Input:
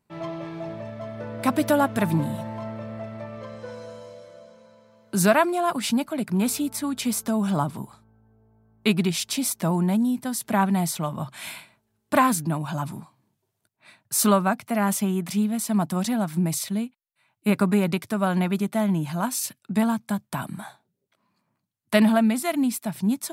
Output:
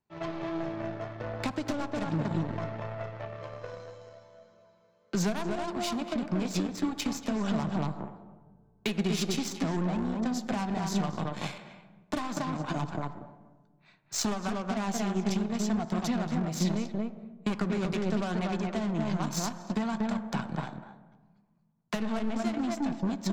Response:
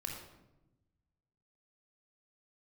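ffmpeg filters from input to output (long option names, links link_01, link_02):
-filter_complex "[0:a]asplit=2[link_01][link_02];[link_02]adelay=234,lowpass=frequency=1400:poles=1,volume=-3dB,asplit=2[link_03][link_04];[link_04]adelay=234,lowpass=frequency=1400:poles=1,volume=0.18,asplit=2[link_05][link_06];[link_06]adelay=234,lowpass=frequency=1400:poles=1,volume=0.18[link_07];[link_01][link_03][link_05][link_07]amix=inputs=4:normalize=0,aresample=16000,aeval=exprs='clip(val(0),-1,0.112)':channel_layout=same,aresample=44100,acompressor=threshold=-25dB:ratio=16,aeval=exprs='0.126*(cos(1*acos(clip(val(0)/0.126,-1,1)))-cos(1*PI/2))+0.0158*(cos(2*acos(clip(val(0)/0.126,-1,1)))-cos(2*PI/2))+0.0126*(cos(7*acos(clip(val(0)/0.126,-1,1)))-cos(7*PI/2))':channel_layout=same,flanger=delay=1.1:depth=5.6:regen=79:speed=0.7:shape=sinusoidal,asplit=2[link_08][link_09];[link_09]equalizer=frequency=690:width=0.34:gain=10.5[link_10];[1:a]atrim=start_sample=2205,asetrate=28224,aresample=44100[link_11];[link_10][link_11]afir=irnorm=-1:irlink=0,volume=-19.5dB[link_12];[link_08][link_12]amix=inputs=2:normalize=0,acrossover=split=300|3000[link_13][link_14][link_15];[link_14]acompressor=threshold=-36dB:ratio=6[link_16];[link_13][link_16][link_15]amix=inputs=3:normalize=0,volume=3.5dB"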